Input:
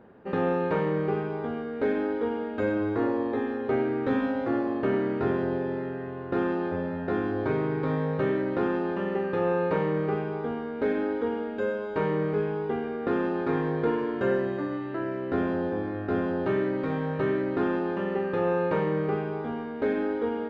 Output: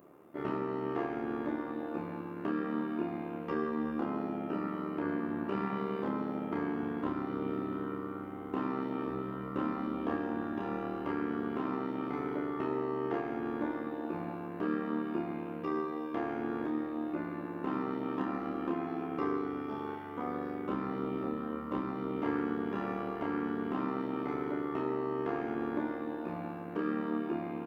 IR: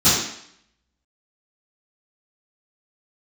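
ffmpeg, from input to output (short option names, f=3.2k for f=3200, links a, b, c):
-filter_complex "[0:a]equalizer=f=480:t=o:w=0.88:g=4,alimiter=limit=-18dB:level=0:latency=1:release=402,tremolo=f=98:d=0.71,asetrate=32667,aresample=44100,aemphasis=mode=production:type=riaa,asplit=2[a][b];[b]adelay=30,volume=-3dB[c];[a][c]amix=inputs=2:normalize=0"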